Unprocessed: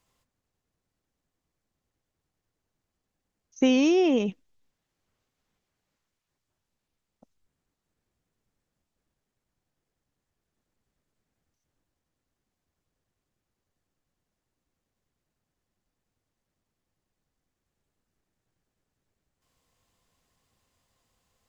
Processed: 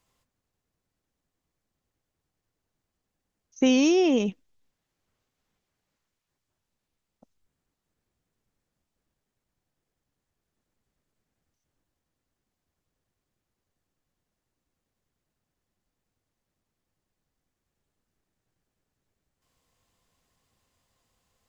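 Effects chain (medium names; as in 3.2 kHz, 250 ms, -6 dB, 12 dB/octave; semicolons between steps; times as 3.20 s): 3.66–4.29 s: tone controls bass +2 dB, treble +7 dB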